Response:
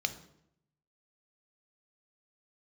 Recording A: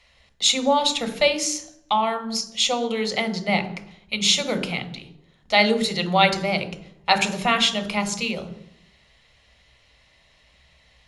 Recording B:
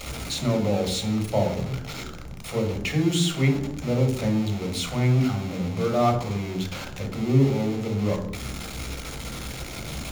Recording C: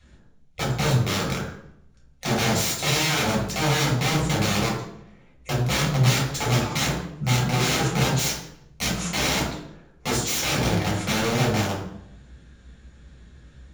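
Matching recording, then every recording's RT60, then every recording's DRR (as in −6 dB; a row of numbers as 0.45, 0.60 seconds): A; 0.75, 0.75, 0.75 seconds; 9.5, 5.0, −3.0 decibels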